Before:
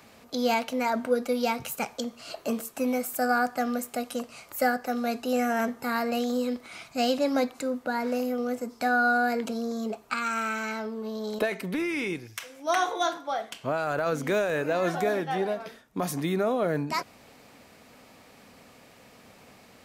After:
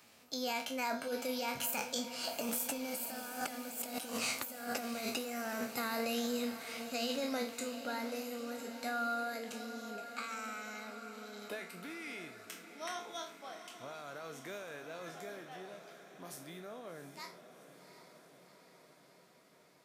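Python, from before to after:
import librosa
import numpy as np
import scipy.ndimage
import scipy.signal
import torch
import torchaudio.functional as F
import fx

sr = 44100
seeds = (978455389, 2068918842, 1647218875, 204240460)

p1 = fx.spec_trails(x, sr, decay_s=0.34)
p2 = fx.doppler_pass(p1, sr, speed_mps=10, closest_m=4.5, pass_at_s=3.99)
p3 = scipy.signal.sosfilt(scipy.signal.butter(2, 74.0, 'highpass', fs=sr, output='sos'), p2)
p4 = fx.high_shelf(p3, sr, hz=2000.0, db=9.0)
p5 = fx.over_compress(p4, sr, threshold_db=-40.0, ratio=-1.0)
p6 = p5 + fx.echo_diffused(p5, sr, ms=742, feedback_pct=67, wet_db=-11, dry=0)
y = F.gain(torch.from_numpy(p6), 1.0).numpy()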